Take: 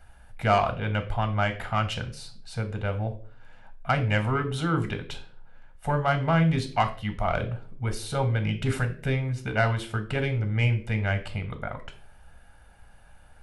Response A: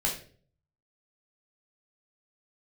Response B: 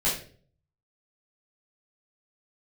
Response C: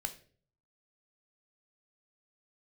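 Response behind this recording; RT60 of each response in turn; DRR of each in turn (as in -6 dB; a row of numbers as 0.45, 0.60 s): C; 0.45, 0.45, 0.45 s; -2.0, -9.0, 7.5 dB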